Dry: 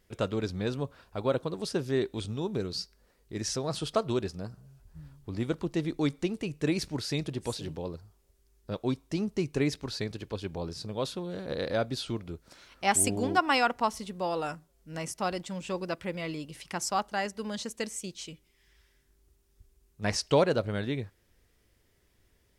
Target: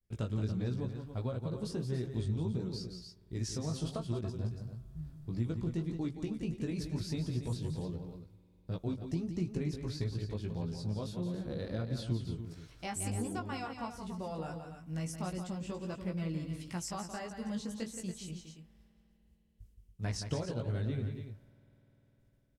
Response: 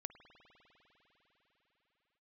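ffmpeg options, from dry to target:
-filter_complex "[0:a]agate=range=0.0224:threshold=0.00141:ratio=3:detection=peak,flanger=delay=16.5:depth=2.7:speed=1.5,acompressor=threshold=0.0224:ratio=4,bass=f=250:g=13,treble=f=4000:g=4,aecho=1:1:172|282.8:0.398|0.316,asplit=2[s0][s1];[1:a]atrim=start_sample=2205[s2];[s1][s2]afir=irnorm=-1:irlink=0,volume=0.355[s3];[s0][s3]amix=inputs=2:normalize=0,adynamicequalizer=threshold=0.00562:dfrequency=1600:dqfactor=0.7:tfrequency=1600:tqfactor=0.7:attack=5:release=100:ratio=0.375:range=2:mode=cutabove:tftype=highshelf,volume=0.422"

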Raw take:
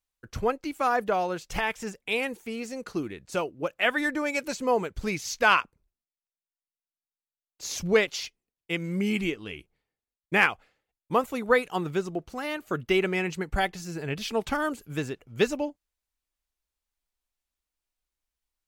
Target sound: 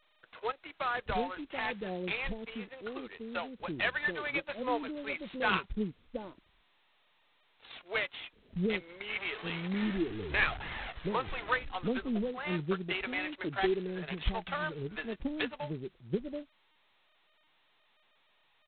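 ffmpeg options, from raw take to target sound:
-filter_complex "[0:a]asettb=1/sr,asplit=3[s0][s1][s2];[s0]atrim=end=9.094[s3];[s1]atrim=start=9.09:end=11.55,asetpts=PTS-STARTPTS,afade=t=in:d=0.004:c=qsin,afade=t=out:st=2.456:d=0.004:c=qsin,aeval=exprs='val(0)+0.5*0.0355*sgn(val(0))':c=same[s4];[s2]atrim=start=11.546[s5];[s3][s4]acrossfade=d=0.004:c1=hsin:c2=qsin[s6];[s6][s5]acrossfade=d=0.004:c1=qsin:c2=hsin,adynamicsmooth=sensitivity=7:basefreq=2600,acrossover=split=500[s7][s8];[s7]adelay=730[s9];[s9][s8]amix=inputs=2:normalize=0,flanger=delay=0.9:depth=5:regen=36:speed=0.28:shape=triangular,acrossover=split=310[s10][s11];[s11]acompressor=threshold=0.0126:ratio=1.5[s12];[s10][s12]amix=inputs=2:normalize=0,adynamicequalizer=threshold=0.00316:dfrequency=1800:dqfactor=1.8:tfrequency=1800:tqfactor=1.8:attack=5:release=100:ratio=0.375:range=1.5:mode=boostabove:tftype=bell" -ar 8000 -c:a adpcm_g726 -b:a 16k

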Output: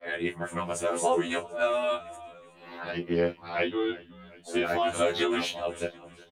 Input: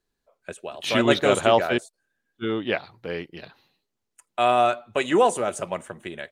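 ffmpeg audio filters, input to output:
-filter_complex "[0:a]areverse,acrossover=split=210|2400[s0][s1][s2];[s1]acompressor=mode=upward:threshold=0.0631:ratio=2.5[s3];[s0][s3][s2]amix=inputs=3:normalize=0,asplit=2[s4][s5];[s5]adelay=31,volume=0.266[s6];[s4][s6]amix=inputs=2:normalize=0,acompressor=threshold=0.0794:ratio=6,asplit=5[s7][s8][s9][s10][s11];[s8]adelay=369,afreqshift=-39,volume=0.112[s12];[s9]adelay=738,afreqshift=-78,volume=0.0525[s13];[s10]adelay=1107,afreqshift=-117,volume=0.0248[s14];[s11]adelay=1476,afreqshift=-156,volume=0.0116[s15];[s7][s12][s13][s14][s15]amix=inputs=5:normalize=0,afftfilt=real='re*2*eq(mod(b,4),0)':imag='im*2*eq(mod(b,4),0)':win_size=2048:overlap=0.75,volume=1.19"

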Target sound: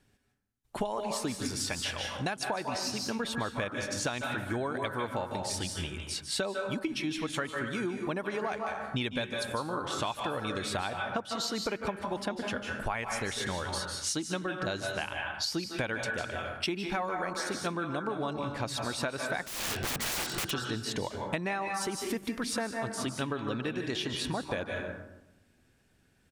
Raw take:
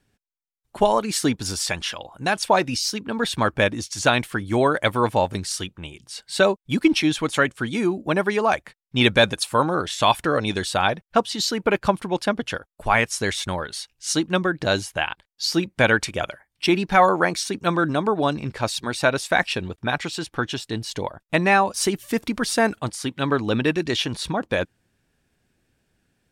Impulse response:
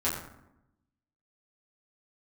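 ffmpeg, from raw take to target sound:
-filter_complex "[0:a]asplit=2[s0][s1];[s1]tiltshelf=f=690:g=-3.5[s2];[1:a]atrim=start_sample=2205,adelay=146[s3];[s2][s3]afir=irnorm=-1:irlink=0,volume=0.188[s4];[s0][s4]amix=inputs=2:normalize=0,aresample=32000,aresample=44100,asettb=1/sr,asplit=3[s5][s6][s7];[s5]atrim=end=19.454[s8];[s6]atrim=start=19.45:end=20.51,asetpts=PTS-STARTPTS,afade=t=in:d=0.004:c=qsin,afade=t=out:st=1.056:d=0.004:c=qsin,aeval=exprs='(mod(17.8*val(0)+1,2)-1)/17.8':c=same[s9];[s7]atrim=start=20.506[s10];[s8][s9]acrossfade=d=0.004:c1=hsin:c2=qsin[s11];[s11][s10]acrossfade=d=0.004:c1=qsin:c2=hsin,acompressor=threshold=0.0316:ratio=10"

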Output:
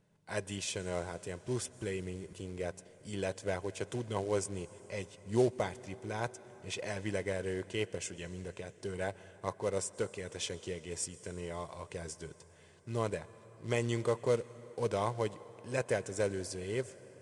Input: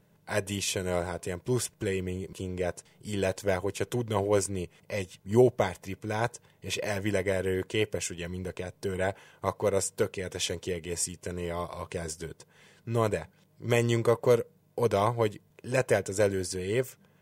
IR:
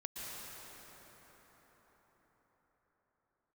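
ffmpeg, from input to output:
-filter_complex "[0:a]acrusher=bits=5:mode=log:mix=0:aa=0.000001,asplit=2[s0][s1];[1:a]atrim=start_sample=2205,highshelf=f=5700:g=7[s2];[s1][s2]afir=irnorm=-1:irlink=0,volume=0.15[s3];[s0][s3]amix=inputs=2:normalize=0,aresample=22050,aresample=44100,volume=0.398"

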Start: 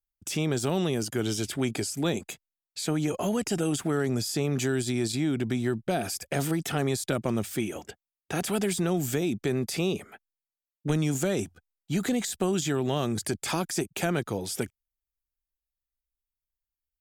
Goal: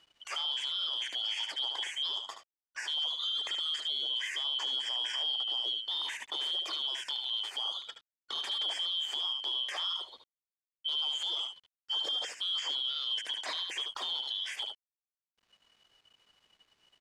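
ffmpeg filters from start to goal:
-af "afftfilt=real='real(if(lt(b,272),68*(eq(floor(b/68),0)*1+eq(floor(b/68),1)*3+eq(floor(b/68),2)*0+eq(floor(b/68),3)*2)+mod(b,68),b),0)':imag='imag(if(lt(b,272),68*(eq(floor(b/68),0)*1+eq(floor(b/68),1)*3+eq(floor(b/68),2)*0+eq(floor(b/68),3)*2)+mod(b,68),b),0)':win_size=2048:overlap=0.75,acompressor=mode=upward:threshold=0.00631:ratio=2.5,asoftclip=type=tanh:threshold=0.126,highpass=f=400:w=0.5412,highpass=f=400:w=1.3066,aecho=1:1:74:0.355,alimiter=level_in=1.06:limit=0.0631:level=0:latency=1:release=57,volume=0.944,acrusher=bits=9:mix=0:aa=0.000001,lowpass=4000"

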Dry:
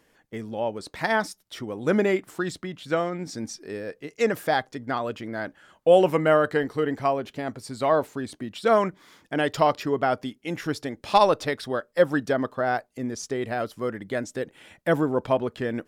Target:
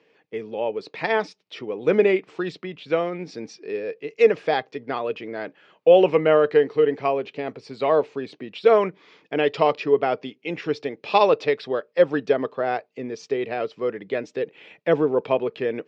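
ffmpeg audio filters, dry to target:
-af "highpass=f=140:w=0.5412,highpass=f=140:w=1.3066,equalizer=f=230:t=q:w=4:g=-5,equalizer=f=440:t=q:w=4:g=10,equalizer=f=1500:t=q:w=4:g=-4,equalizer=f=2500:t=q:w=4:g=9,lowpass=f=4800:w=0.5412,lowpass=f=4800:w=1.3066" -ar 48000 -c:a libmp3lame -b:a 56k

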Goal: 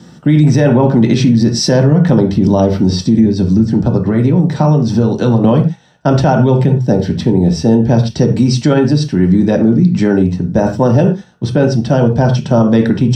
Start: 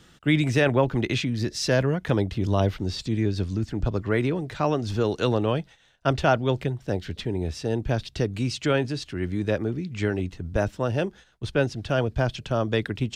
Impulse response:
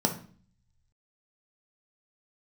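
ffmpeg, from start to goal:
-filter_complex "[0:a]asettb=1/sr,asplit=3[s0][s1][s2];[s0]atrim=end=3.184[s3];[s1]atrim=start=3.18:end=5.44,asetpts=PTS-STARTPTS,afade=t=in:d=0.004:c=qsin,afade=t=out:st=2.256:d=0.004:c=qsin,acrossover=split=150[s4][s5];[s5]acompressor=threshold=0.0398:ratio=6[s6];[s4][s6]amix=inputs=2:normalize=0[s7];[s2]atrim=start=5.436[s8];[s3][s7]acrossfade=d=0.004:c1=hsin:c2=qsin[s9];[s9][s8]acrossfade=d=0.004:c1=qsin:c2=hsin[s10];[1:a]atrim=start_sample=2205,afade=t=out:st=0.17:d=0.01,atrim=end_sample=7938[s11];[s10][s11]afir=irnorm=-1:irlink=0,alimiter=level_in=1.5:limit=0.891:release=50:level=0:latency=1,volume=0.891"

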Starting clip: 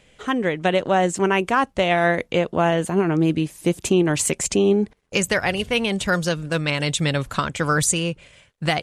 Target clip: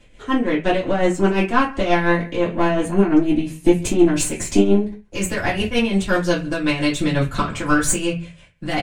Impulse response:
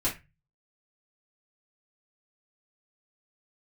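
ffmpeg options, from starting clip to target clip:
-filter_complex "[0:a]aecho=1:1:135:0.075,aeval=exprs='(tanh(3.55*val(0)+0.35)-tanh(0.35))/3.55':c=same,tremolo=f=5.7:d=0.65[s0];[1:a]atrim=start_sample=2205[s1];[s0][s1]afir=irnorm=-1:irlink=0,volume=0.708"

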